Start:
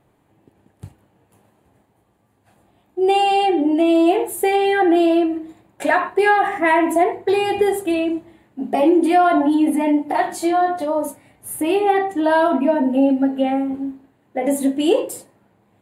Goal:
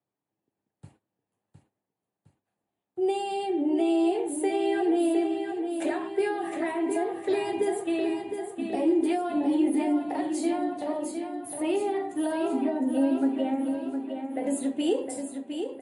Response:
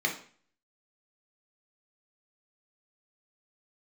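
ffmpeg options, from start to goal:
-filter_complex "[0:a]agate=range=-19dB:threshold=-45dB:ratio=16:detection=peak,highpass=130,acrossover=split=330|430|4400[a][b][c][d];[c]acompressor=threshold=-26dB:ratio=12[e];[a][b][e][d]amix=inputs=4:normalize=0,aecho=1:1:711|1422|2133|2844|3555|4266:0.447|0.228|0.116|0.0593|0.0302|0.0154,volume=-7.5dB" -ar 32000 -c:a libmp3lame -b:a 48k

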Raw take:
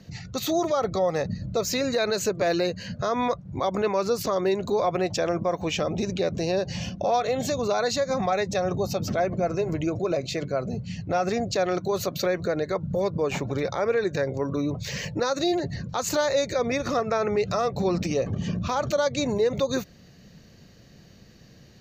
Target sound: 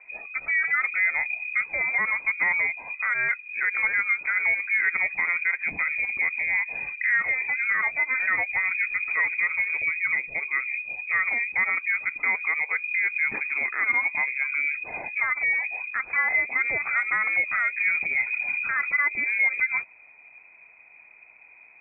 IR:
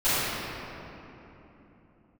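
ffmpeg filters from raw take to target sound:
-filter_complex "[0:a]asettb=1/sr,asplit=3[a][b][c];[a]atrim=end=4.144[d];[b]atrim=start=4.14:end=5.23,asetpts=PTS-STARTPTS,afade=t=in:d=0.004:c=qsin,afade=t=out:st=1.086:d=0.004:c=qsin,bandreject=f=292.9:t=h:w=4,bandreject=f=585.8:t=h:w=4,bandreject=f=878.7:t=h:w=4,bandreject=f=1.1716k:t=h:w=4,bandreject=f=1.4645k:t=h:w=4,bandreject=f=1.7574k:t=h:w=4[e];[c]atrim=start=5.226[f];[d][e]acrossfade=d=0.004:c1=hsin:c2=qsin[g];[g][f]acrossfade=d=0.004:c1=qsin:c2=hsin,lowpass=f=2.2k:t=q:w=0.5098,lowpass=f=2.2k:t=q:w=0.6013,lowpass=f=2.2k:t=q:w=0.9,lowpass=f=2.2k:t=q:w=2.563,afreqshift=-2600"

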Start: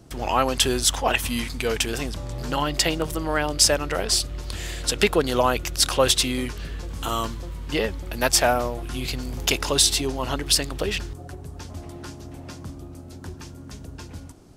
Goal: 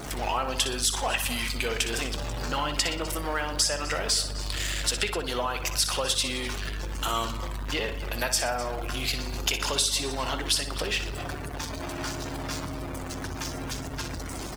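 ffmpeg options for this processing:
-filter_complex "[0:a]aeval=exprs='val(0)+0.5*0.0596*sgn(val(0))':c=same,acompressor=threshold=-22dB:ratio=6,lowshelf=f=470:g=-11.5,asplit=2[a][b];[b]aecho=0:1:255:0.178[c];[a][c]amix=inputs=2:normalize=0,aeval=exprs='val(0)+0.00708*(sin(2*PI*50*n/s)+sin(2*PI*2*50*n/s)/2+sin(2*PI*3*50*n/s)/3+sin(2*PI*4*50*n/s)/4+sin(2*PI*5*50*n/s)/5)':c=same,asplit=2[d][e];[e]aecho=0:1:61|122|183|244|305:0.355|0.17|0.0817|0.0392|0.0188[f];[d][f]amix=inputs=2:normalize=0,afftdn=nr=13:nf=-40"

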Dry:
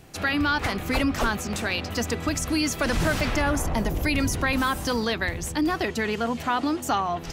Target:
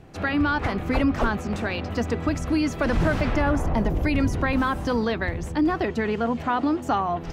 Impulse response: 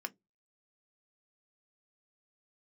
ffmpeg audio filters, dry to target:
-af "lowpass=f=1.2k:p=1,volume=3dB"

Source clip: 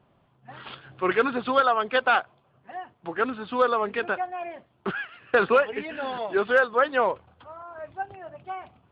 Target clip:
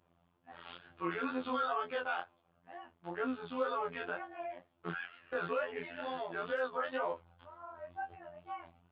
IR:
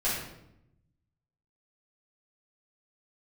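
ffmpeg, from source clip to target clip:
-af "afftfilt=real='hypot(re,im)*cos(PI*b)':imag='0':win_size=2048:overlap=0.75,alimiter=limit=-17.5dB:level=0:latency=1:release=15,flanger=delay=19.5:depth=5.2:speed=2.1,volume=-3dB"

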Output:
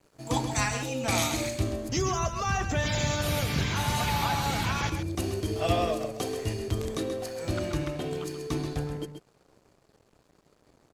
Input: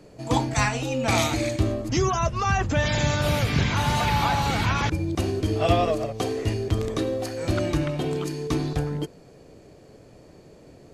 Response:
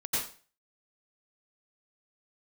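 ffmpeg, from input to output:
-af "asetnsamples=n=441:p=0,asendcmd='7.03 highshelf g 5',highshelf=f=6.8k:g=11,aeval=exprs='sgn(val(0))*max(abs(val(0))-0.00398,0)':c=same,aecho=1:1:132:0.376,volume=-5.5dB"

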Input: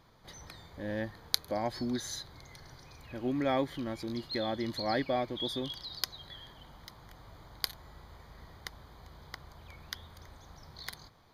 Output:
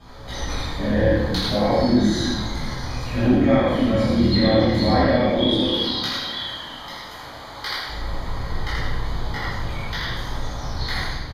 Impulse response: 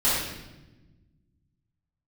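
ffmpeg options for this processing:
-filter_complex "[0:a]lowpass=11k,acrossover=split=3600[a][b];[b]acompressor=threshold=-53dB:ratio=4:attack=1:release=60[c];[a][c]amix=inputs=2:normalize=0,asettb=1/sr,asplit=3[d][e][f];[d]atrim=end=5.474[g];[e]atrim=start=5.47:end=7.89,asetpts=PTS-STARTPTS,afade=t=in:d=0.004:c=qsin,afade=t=out:st=2.416:d=0.004:c=qsin,highpass=f=760:p=1[h];[f]atrim=start=7.886[i];[g][h]acrossfade=d=0.004:c1=hsin:c2=qsin[j];[j][i]acrossfade=d=0.004:c1=qsin:c2=hsin,acompressor=threshold=-39dB:ratio=4,flanger=delay=16:depth=3.3:speed=0.28,asplit=6[k][l][m][n][o][p];[l]adelay=81,afreqshift=-36,volume=-3dB[q];[m]adelay=162,afreqshift=-72,volume=-11.9dB[r];[n]adelay=243,afreqshift=-108,volume=-20.7dB[s];[o]adelay=324,afreqshift=-144,volume=-29.6dB[t];[p]adelay=405,afreqshift=-180,volume=-38.5dB[u];[k][q][r][s][t][u]amix=inputs=6:normalize=0[v];[1:a]atrim=start_sample=2205[w];[v][w]afir=irnorm=-1:irlink=0,volume=8dB"

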